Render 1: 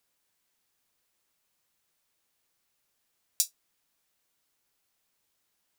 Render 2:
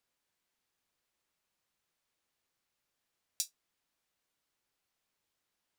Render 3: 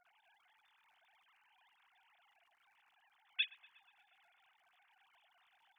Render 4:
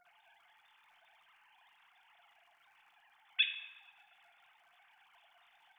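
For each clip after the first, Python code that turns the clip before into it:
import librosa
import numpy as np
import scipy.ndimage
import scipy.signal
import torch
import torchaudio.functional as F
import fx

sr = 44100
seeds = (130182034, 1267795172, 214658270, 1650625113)

y1 = fx.high_shelf(x, sr, hz=7400.0, db=-8.5)
y1 = y1 * librosa.db_to_amplitude(-4.0)
y2 = fx.sine_speech(y1, sr)
y2 = fx.dmg_crackle(y2, sr, seeds[0], per_s=87.0, level_db=-70.0)
y2 = fx.echo_wet_lowpass(y2, sr, ms=120, feedback_pct=65, hz=1500.0, wet_db=-14.0)
y2 = y2 * librosa.db_to_amplitude(1.0)
y3 = fx.room_shoebox(y2, sr, seeds[1], volume_m3=580.0, walls='mixed', distance_m=0.8)
y3 = y3 * librosa.db_to_amplitude(4.5)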